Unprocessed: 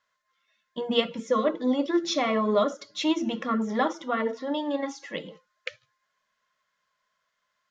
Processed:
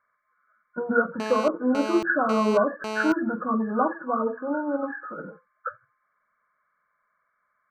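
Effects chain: nonlinear frequency compression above 1100 Hz 4:1; 1.2–3.12 GSM buzz -32 dBFS; 4.86–5.27 negative-ratio compressor -35 dBFS, ratio -1; gain +1.5 dB

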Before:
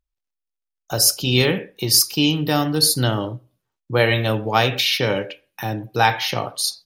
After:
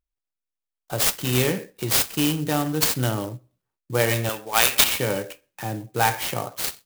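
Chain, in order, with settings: 4.29–4.84 weighting filter ITU-R 468; clock jitter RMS 0.055 ms; gain -4 dB

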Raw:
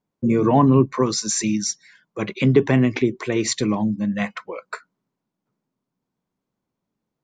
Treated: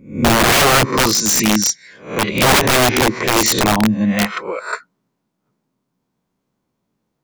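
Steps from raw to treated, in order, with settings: spectral swells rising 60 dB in 0.42 s; wrapped overs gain 13.5 dB; gain +6.5 dB

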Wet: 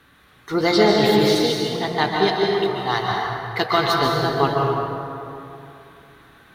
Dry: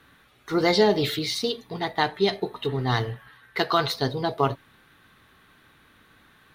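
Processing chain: 2.48–3.11 resonant low shelf 520 Hz -11.5 dB, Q 1.5; plate-style reverb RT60 2.8 s, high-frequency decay 0.5×, pre-delay 0.12 s, DRR -1.5 dB; gain +2 dB

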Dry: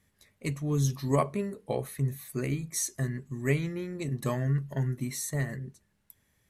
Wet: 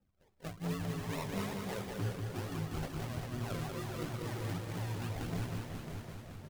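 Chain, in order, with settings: short-time reversal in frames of 50 ms; limiter -25.5 dBFS, peak gain reduction 7.5 dB; decimation with a swept rate 40×, swing 60% 2.3 Hz; phaser 1.5 Hz, delay 2.8 ms, feedback 50%; on a send: feedback echo 0.192 s, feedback 55%, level -4 dB; on the sum: echoes that change speed 0.231 s, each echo -1 st, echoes 3, each echo -6 dB; gain -6.5 dB

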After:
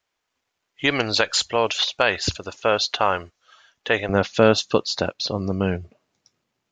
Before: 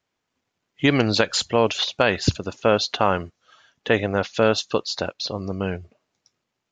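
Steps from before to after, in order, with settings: bell 170 Hz -12 dB 2.4 oct, from 4.09 s +2.5 dB; gain +2 dB

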